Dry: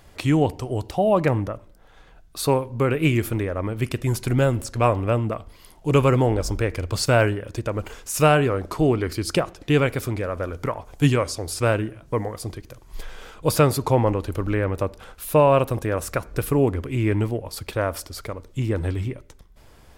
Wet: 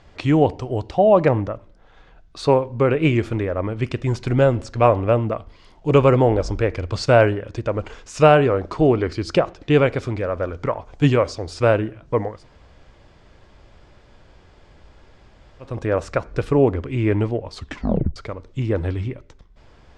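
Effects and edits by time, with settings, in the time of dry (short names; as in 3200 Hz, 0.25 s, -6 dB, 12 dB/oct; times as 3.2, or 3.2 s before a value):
12.35–15.71 room tone, crossfade 0.24 s
17.53 tape stop 0.63 s
whole clip: Bessel low-pass 4600 Hz, order 6; dynamic EQ 580 Hz, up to +5 dB, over -29 dBFS, Q 1; gain +1 dB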